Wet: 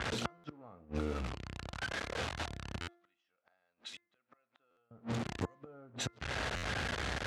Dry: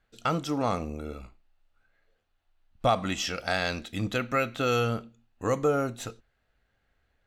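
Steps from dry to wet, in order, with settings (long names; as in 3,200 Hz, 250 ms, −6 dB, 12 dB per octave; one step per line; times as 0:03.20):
converter with a step at zero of −35 dBFS
gate with flip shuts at −21 dBFS, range −40 dB
downward compressor 4 to 1, threshold −49 dBFS, peak gain reduction 17.5 dB
0:02.85–0:04.91: first difference
hum removal 346.5 Hz, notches 6
low-pass that shuts in the quiet parts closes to 860 Hz, open at −45.5 dBFS
high-pass filter 61 Hz 24 dB per octave
high-frequency loss of the air 70 metres
buffer that repeats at 0:00.37/0:02.81/0:04.70/0:06.56, samples 512, times 5
level +13 dB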